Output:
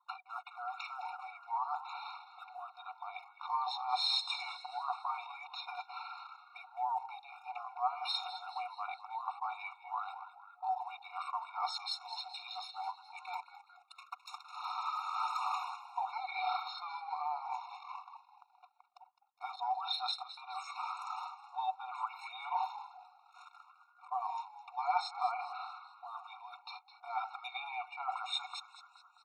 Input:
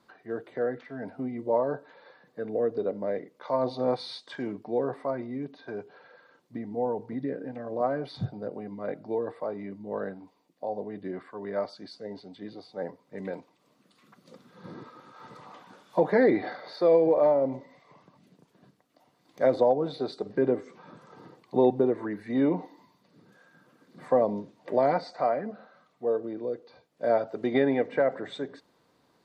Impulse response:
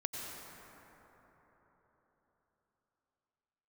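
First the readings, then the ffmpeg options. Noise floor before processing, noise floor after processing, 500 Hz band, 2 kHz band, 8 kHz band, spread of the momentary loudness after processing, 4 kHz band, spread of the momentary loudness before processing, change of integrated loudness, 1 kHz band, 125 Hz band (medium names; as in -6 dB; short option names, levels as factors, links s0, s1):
-68 dBFS, -66 dBFS, -28.0 dB, -6.0 dB, no reading, 14 LU, +8.0 dB, 17 LU, -10.5 dB, -0.5 dB, under -40 dB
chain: -filter_complex "[0:a]highpass=f=960:p=1,areverse,acompressor=threshold=0.00631:ratio=6,areverse,anlmdn=0.0000158,acontrast=50,asplit=2[s0][s1];[s1]asplit=5[s2][s3][s4][s5][s6];[s2]adelay=210,afreqshift=-89,volume=0.224[s7];[s3]adelay=420,afreqshift=-178,volume=0.116[s8];[s4]adelay=630,afreqshift=-267,volume=0.0603[s9];[s5]adelay=840,afreqshift=-356,volume=0.0316[s10];[s6]adelay=1050,afreqshift=-445,volume=0.0164[s11];[s7][s8][s9][s10][s11]amix=inputs=5:normalize=0[s12];[s0][s12]amix=inputs=2:normalize=0,afftfilt=real='re*eq(mod(floor(b*sr/1024/720),2),1)':imag='im*eq(mod(floor(b*sr/1024/720),2),1)':win_size=1024:overlap=0.75,volume=3.55"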